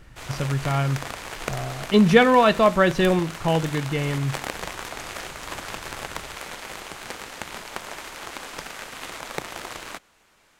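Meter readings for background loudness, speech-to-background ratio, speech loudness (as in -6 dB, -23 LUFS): -34.5 LUFS, 14.0 dB, -20.5 LUFS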